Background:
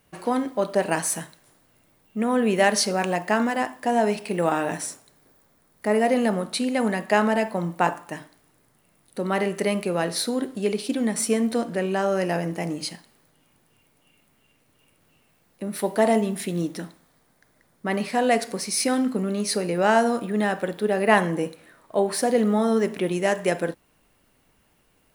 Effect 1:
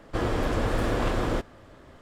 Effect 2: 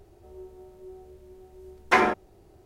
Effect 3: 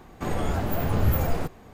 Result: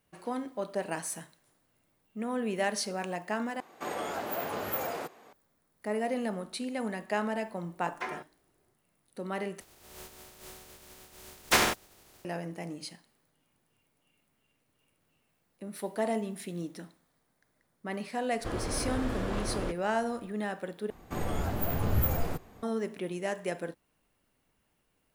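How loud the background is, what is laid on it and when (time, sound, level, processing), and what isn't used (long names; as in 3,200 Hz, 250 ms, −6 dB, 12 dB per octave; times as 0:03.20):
background −11 dB
0:03.60: overwrite with 3 −2.5 dB + high-pass filter 420 Hz
0:06.09: mix in 2 −17 dB + low-shelf EQ 190 Hz −7.5 dB
0:09.60: overwrite with 2 −4 dB + compressing power law on the bin magnitudes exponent 0.33
0:18.31: mix in 1 −8 dB
0:20.90: overwrite with 3 −5.5 dB + high-shelf EQ 12,000 Hz +9.5 dB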